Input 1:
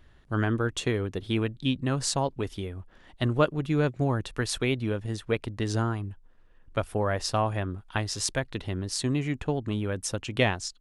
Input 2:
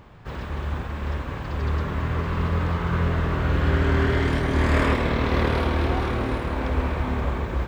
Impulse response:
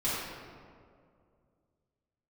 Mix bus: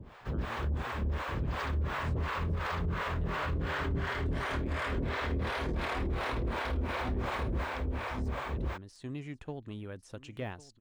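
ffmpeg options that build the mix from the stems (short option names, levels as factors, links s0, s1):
-filter_complex "[0:a]deesser=0.95,volume=0.237,afade=t=in:st=8.49:d=0.65:silence=0.354813,asplit=2[s0][s1];[s1]volume=0.126[s2];[1:a]acrossover=split=82|420|1700[s3][s4][s5][s6];[s3]acompressor=threshold=0.0398:ratio=4[s7];[s4]acompressor=threshold=0.0224:ratio=4[s8];[s5]acompressor=threshold=0.0224:ratio=4[s9];[s6]acompressor=threshold=0.0126:ratio=4[s10];[s7][s8][s9][s10]amix=inputs=4:normalize=0,acrossover=split=490[s11][s12];[s11]aeval=exprs='val(0)*(1-1/2+1/2*cos(2*PI*2.8*n/s))':c=same[s13];[s12]aeval=exprs='val(0)*(1-1/2-1/2*cos(2*PI*2.8*n/s))':c=same[s14];[s13][s14]amix=inputs=2:normalize=0,volume=1.33,asplit=2[s15][s16];[s16]volume=0.668[s17];[s2][s17]amix=inputs=2:normalize=0,aecho=0:1:1102:1[s18];[s0][s15][s18]amix=inputs=3:normalize=0,alimiter=level_in=1.19:limit=0.0631:level=0:latency=1:release=36,volume=0.841"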